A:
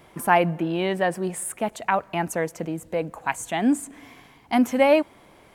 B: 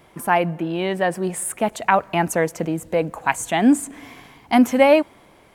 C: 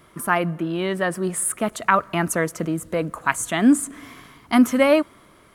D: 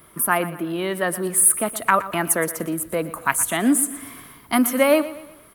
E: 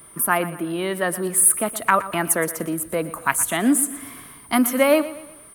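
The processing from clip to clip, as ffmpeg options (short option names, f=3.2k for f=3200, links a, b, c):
-af "dynaudnorm=f=230:g=9:m=11.5dB"
-af "equalizer=f=500:t=o:w=0.33:g=-4,equalizer=f=800:t=o:w=0.33:g=-11,equalizer=f=1.25k:t=o:w=0.33:g=8,equalizer=f=2.5k:t=o:w=0.33:g=-4,equalizer=f=10k:t=o:w=0.33:g=5"
-filter_complex "[0:a]acrossover=split=240[a][b];[a]acompressor=threshold=-35dB:ratio=6[c];[b]aexciter=amount=3.1:drive=8.8:freq=9.5k[d];[c][d]amix=inputs=2:normalize=0,aecho=1:1:119|238|357|476:0.168|0.0705|0.0296|0.0124"
-af "aeval=exprs='val(0)+0.00562*sin(2*PI*9300*n/s)':c=same"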